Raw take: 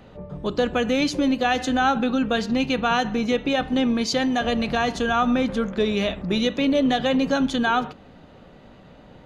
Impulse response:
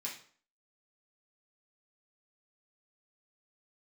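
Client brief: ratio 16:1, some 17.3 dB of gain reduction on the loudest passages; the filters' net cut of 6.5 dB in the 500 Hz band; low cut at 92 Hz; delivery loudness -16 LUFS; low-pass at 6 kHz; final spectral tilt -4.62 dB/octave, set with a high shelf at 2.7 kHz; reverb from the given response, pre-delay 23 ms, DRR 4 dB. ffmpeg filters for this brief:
-filter_complex "[0:a]highpass=92,lowpass=6000,equalizer=f=500:t=o:g=-7.5,highshelf=f=2700:g=4,acompressor=threshold=0.0158:ratio=16,asplit=2[s0][s1];[1:a]atrim=start_sample=2205,adelay=23[s2];[s1][s2]afir=irnorm=-1:irlink=0,volume=0.631[s3];[s0][s3]amix=inputs=2:normalize=0,volume=11.9"

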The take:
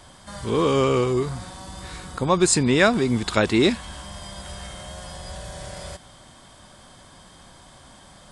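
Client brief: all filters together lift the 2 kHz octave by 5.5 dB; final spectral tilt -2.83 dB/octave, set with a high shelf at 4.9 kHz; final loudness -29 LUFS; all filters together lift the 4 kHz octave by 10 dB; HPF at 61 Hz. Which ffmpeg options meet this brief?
-af "highpass=61,equalizer=f=2000:t=o:g=4,equalizer=f=4000:t=o:g=8,highshelf=f=4900:g=6,volume=0.316"

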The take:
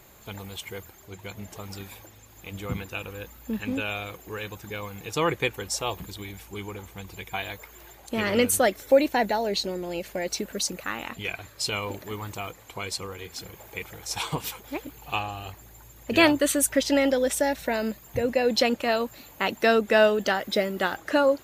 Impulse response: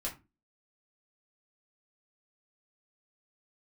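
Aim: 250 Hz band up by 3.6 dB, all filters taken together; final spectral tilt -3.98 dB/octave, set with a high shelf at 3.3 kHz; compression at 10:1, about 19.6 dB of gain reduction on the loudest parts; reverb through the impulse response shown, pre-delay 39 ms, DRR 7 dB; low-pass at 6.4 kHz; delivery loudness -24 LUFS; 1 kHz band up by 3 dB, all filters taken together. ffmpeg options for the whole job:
-filter_complex "[0:a]lowpass=6400,equalizer=f=250:t=o:g=4,equalizer=f=1000:t=o:g=3.5,highshelf=f=3300:g=3.5,acompressor=threshold=0.0282:ratio=10,asplit=2[s0][s1];[1:a]atrim=start_sample=2205,adelay=39[s2];[s1][s2]afir=irnorm=-1:irlink=0,volume=0.376[s3];[s0][s3]amix=inputs=2:normalize=0,volume=3.98"

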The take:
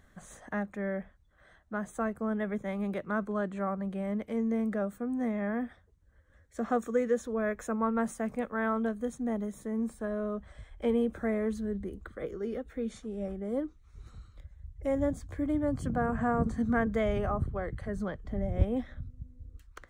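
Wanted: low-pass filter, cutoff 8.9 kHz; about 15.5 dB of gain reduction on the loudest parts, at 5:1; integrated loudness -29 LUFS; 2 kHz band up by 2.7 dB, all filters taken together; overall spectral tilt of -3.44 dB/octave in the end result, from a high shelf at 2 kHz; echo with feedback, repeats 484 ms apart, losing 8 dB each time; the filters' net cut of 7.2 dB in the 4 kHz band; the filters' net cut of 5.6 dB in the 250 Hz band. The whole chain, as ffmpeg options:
-af "lowpass=8900,equalizer=f=250:t=o:g=-6.5,highshelf=f=2000:g=-6.5,equalizer=f=2000:t=o:g=8.5,equalizer=f=4000:t=o:g=-7.5,acompressor=threshold=0.0141:ratio=5,aecho=1:1:484|968|1452|1936|2420:0.398|0.159|0.0637|0.0255|0.0102,volume=4.22"

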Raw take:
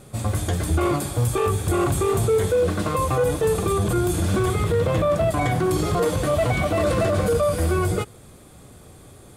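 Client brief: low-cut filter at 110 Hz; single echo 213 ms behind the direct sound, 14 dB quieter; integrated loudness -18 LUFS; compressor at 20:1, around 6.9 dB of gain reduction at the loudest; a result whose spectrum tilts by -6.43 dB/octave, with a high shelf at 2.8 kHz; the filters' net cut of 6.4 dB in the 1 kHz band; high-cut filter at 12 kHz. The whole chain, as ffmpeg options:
-af "highpass=110,lowpass=12000,equalizer=f=1000:t=o:g=-7.5,highshelf=f=2800:g=-8,acompressor=threshold=0.0562:ratio=20,aecho=1:1:213:0.2,volume=3.76"

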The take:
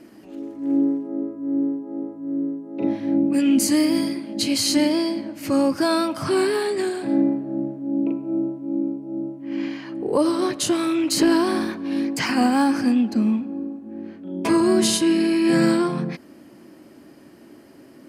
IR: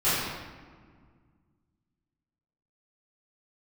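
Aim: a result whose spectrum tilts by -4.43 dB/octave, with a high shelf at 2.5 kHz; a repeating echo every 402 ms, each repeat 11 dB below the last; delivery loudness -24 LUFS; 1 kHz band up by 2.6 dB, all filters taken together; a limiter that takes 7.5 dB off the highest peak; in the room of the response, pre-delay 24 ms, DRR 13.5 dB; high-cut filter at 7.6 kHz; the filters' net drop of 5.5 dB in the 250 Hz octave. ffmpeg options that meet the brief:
-filter_complex "[0:a]lowpass=7600,equalizer=f=250:t=o:g=-7.5,equalizer=f=1000:t=o:g=4.5,highshelf=f=2500:g=-4.5,alimiter=limit=0.15:level=0:latency=1,aecho=1:1:402|804|1206:0.282|0.0789|0.0221,asplit=2[s0][s1];[1:a]atrim=start_sample=2205,adelay=24[s2];[s1][s2]afir=irnorm=-1:irlink=0,volume=0.0376[s3];[s0][s3]amix=inputs=2:normalize=0,volume=1.33"

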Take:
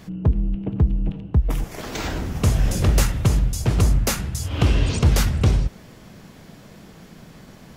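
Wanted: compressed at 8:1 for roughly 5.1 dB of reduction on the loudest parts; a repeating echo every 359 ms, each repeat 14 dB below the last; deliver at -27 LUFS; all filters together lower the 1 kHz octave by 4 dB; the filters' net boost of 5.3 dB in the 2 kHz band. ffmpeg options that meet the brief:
-af "equalizer=f=1000:t=o:g=-8.5,equalizer=f=2000:t=o:g=9,acompressor=threshold=0.141:ratio=8,aecho=1:1:359|718:0.2|0.0399,volume=0.794"

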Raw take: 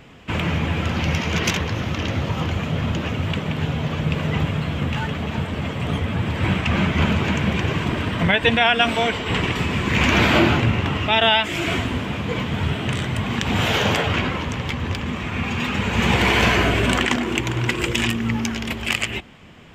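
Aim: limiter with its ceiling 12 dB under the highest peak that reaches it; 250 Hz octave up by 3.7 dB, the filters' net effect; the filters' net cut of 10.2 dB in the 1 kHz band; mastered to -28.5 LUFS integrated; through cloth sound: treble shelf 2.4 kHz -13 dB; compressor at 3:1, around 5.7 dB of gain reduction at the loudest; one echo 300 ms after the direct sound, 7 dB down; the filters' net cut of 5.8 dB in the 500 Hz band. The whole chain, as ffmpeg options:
-af "equalizer=f=250:t=o:g=7,equalizer=f=500:t=o:g=-7.5,equalizer=f=1000:t=o:g=-9,acompressor=threshold=0.1:ratio=3,alimiter=limit=0.1:level=0:latency=1,highshelf=f=2400:g=-13,aecho=1:1:300:0.447"

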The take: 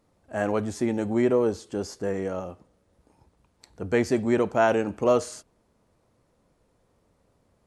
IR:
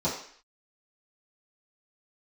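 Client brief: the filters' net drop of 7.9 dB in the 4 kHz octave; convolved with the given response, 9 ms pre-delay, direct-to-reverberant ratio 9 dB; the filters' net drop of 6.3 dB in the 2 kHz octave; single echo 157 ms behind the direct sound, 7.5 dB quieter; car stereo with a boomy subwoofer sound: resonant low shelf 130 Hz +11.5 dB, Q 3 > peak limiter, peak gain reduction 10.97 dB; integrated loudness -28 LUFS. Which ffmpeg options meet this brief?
-filter_complex "[0:a]equalizer=f=2000:t=o:g=-7,equalizer=f=4000:t=o:g=-9,aecho=1:1:157:0.422,asplit=2[s0][s1];[1:a]atrim=start_sample=2205,adelay=9[s2];[s1][s2]afir=irnorm=-1:irlink=0,volume=0.112[s3];[s0][s3]amix=inputs=2:normalize=0,lowshelf=f=130:t=q:w=3:g=11.5,volume=1.12,alimiter=limit=0.1:level=0:latency=1"

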